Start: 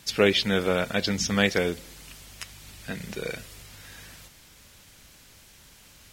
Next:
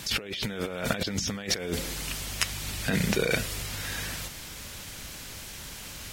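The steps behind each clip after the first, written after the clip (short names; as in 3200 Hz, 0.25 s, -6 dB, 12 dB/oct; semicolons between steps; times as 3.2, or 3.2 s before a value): negative-ratio compressor -35 dBFS, ratio -1; gain +4.5 dB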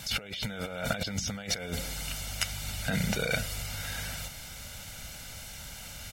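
comb 1.4 ms, depth 62%; in parallel at -11.5 dB: soft clip -20 dBFS, distortion -13 dB; on the sum: gain -6 dB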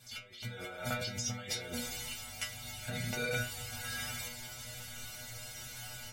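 AGC gain up to 13 dB; flange 1.5 Hz, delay 6.3 ms, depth 6.8 ms, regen -74%; metallic resonator 120 Hz, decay 0.39 s, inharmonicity 0.002; gain +1 dB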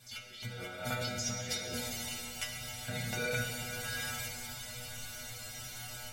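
reverb RT60 3.4 s, pre-delay 38 ms, DRR 4 dB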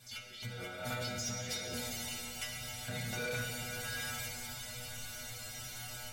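soft clip -32 dBFS, distortion -15 dB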